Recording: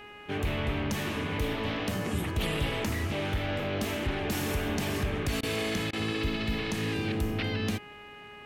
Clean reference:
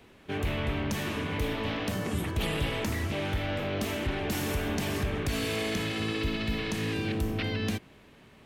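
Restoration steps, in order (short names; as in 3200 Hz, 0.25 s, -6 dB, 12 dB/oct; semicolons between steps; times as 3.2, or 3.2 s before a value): de-hum 414.5 Hz, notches 7; interpolate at 5.41/5.91, 19 ms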